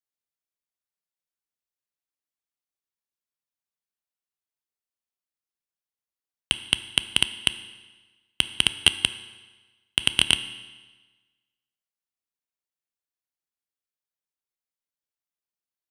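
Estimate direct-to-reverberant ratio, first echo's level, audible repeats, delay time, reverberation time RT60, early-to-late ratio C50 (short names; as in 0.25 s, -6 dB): 11.5 dB, none, none, none, 1.3 s, 13.5 dB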